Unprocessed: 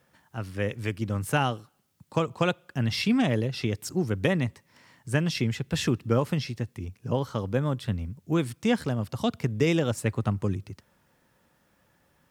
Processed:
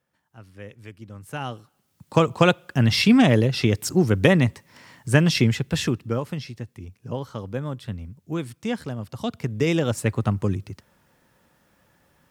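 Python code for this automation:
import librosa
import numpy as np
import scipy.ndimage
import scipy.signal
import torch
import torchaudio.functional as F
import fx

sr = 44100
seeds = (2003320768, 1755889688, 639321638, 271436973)

y = fx.gain(x, sr, db=fx.line((1.24, -11.5), (1.52, -3.0), (2.2, 8.0), (5.45, 8.0), (6.22, -3.0), (9.05, -3.0), (9.97, 4.0)))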